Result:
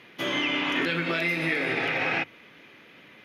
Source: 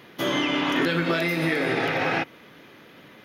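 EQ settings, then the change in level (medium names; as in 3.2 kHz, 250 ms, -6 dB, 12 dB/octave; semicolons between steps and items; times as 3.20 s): low-pass 12 kHz 12 dB/octave; peaking EQ 2.4 kHz +8.5 dB 0.82 oct; hum notches 50/100/150 Hz; -5.5 dB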